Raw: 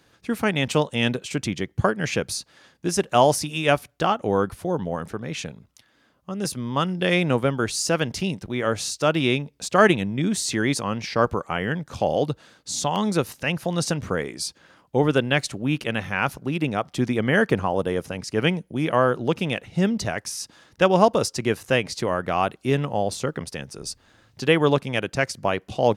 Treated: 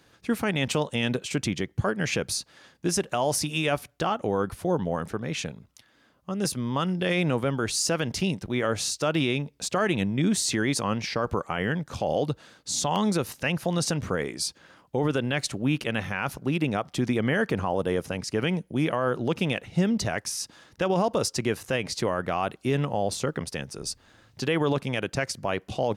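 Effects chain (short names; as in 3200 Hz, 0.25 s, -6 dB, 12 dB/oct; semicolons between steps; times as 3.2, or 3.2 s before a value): limiter -15 dBFS, peak gain reduction 11.5 dB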